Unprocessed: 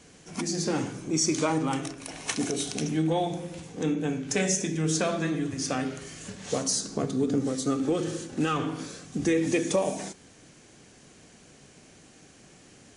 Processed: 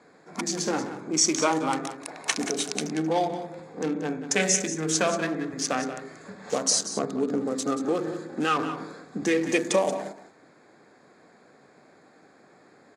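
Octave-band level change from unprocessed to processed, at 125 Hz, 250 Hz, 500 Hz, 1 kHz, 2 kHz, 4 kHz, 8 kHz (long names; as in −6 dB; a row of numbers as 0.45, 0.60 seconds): −6.0, −1.0, +2.0, +4.5, +4.5, +3.5, +4.0 decibels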